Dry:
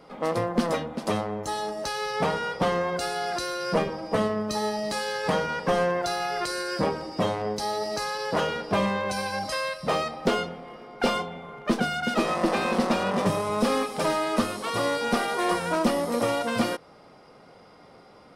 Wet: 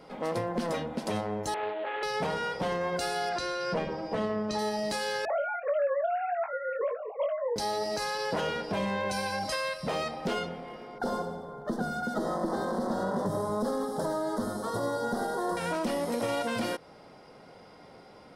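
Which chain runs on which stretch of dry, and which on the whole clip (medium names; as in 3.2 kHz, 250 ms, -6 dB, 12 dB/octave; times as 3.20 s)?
1.54–2.03 s: CVSD coder 16 kbps + steep high-pass 310 Hz 48 dB/octave + loudspeaker Doppler distortion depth 0.13 ms
3.29–4.59 s: distance through air 78 m + hum notches 50/100/150/200/250/300/350/400 Hz
5.25–7.56 s: formants replaced by sine waves + low-pass 1.1 kHz 6 dB/octave + doubling 21 ms -6 dB
10.98–15.57 s: Butterworth band-stop 2.5 kHz, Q 1.2 + peaking EQ 4.4 kHz -7 dB 2.9 oct + feedback delay 86 ms, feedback 46%, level -11 dB
whole clip: band-stop 1.2 kHz, Q 10; compression 1.5:1, threshold -30 dBFS; peak limiter -21.5 dBFS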